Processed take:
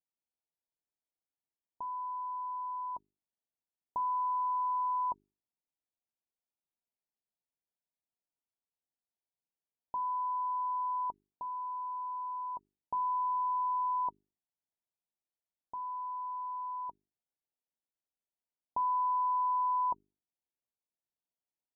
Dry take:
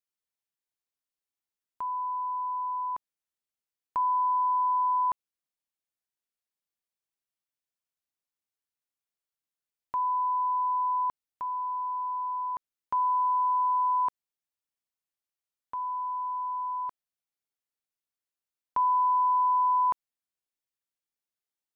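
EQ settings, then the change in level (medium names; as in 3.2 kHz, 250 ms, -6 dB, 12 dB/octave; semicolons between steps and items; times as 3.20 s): rippled Chebyshev low-pass 980 Hz, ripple 3 dB; hum notches 50/100/150/200/250/300/350/400 Hz; 0.0 dB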